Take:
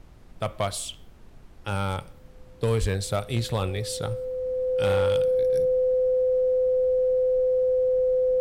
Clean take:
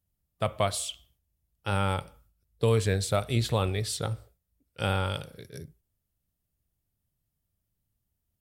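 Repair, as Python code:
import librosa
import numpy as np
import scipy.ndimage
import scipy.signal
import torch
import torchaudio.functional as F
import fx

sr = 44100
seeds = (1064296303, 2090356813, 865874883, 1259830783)

y = fx.fix_declip(x, sr, threshold_db=-17.0)
y = fx.notch(y, sr, hz=510.0, q=30.0)
y = fx.fix_deplosive(y, sr, at_s=(2.8,))
y = fx.noise_reduce(y, sr, print_start_s=1.09, print_end_s=1.59, reduce_db=30.0)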